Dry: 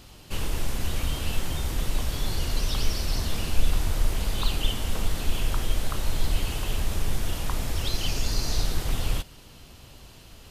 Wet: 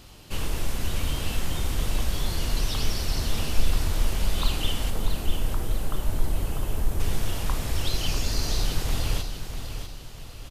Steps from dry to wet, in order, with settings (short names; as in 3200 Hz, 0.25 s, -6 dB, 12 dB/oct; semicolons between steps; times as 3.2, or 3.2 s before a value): 4.9–7 bell 3700 Hz -11 dB 2.3 oct; feedback echo 0.646 s, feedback 39%, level -8.5 dB; reverb RT60 0.55 s, pre-delay 18 ms, DRR 12 dB